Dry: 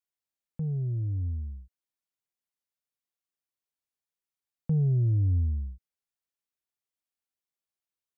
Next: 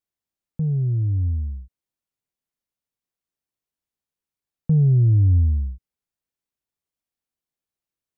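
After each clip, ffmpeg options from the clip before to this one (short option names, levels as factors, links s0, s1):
-af "lowshelf=f=490:g=9"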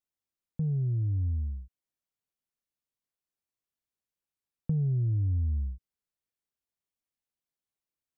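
-af "acompressor=threshold=0.0891:ratio=6,volume=0.562"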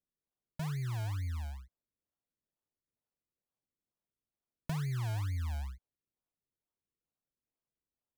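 -af "acrusher=samples=39:mix=1:aa=0.000001:lfo=1:lforange=39:lforate=2.2,volume=0.422"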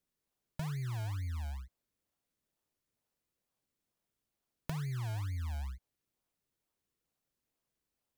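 -af "acompressor=threshold=0.00631:ratio=4,volume=2.11"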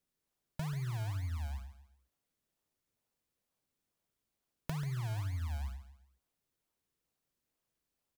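-af "aecho=1:1:138|276|414:0.237|0.0806|0.0274"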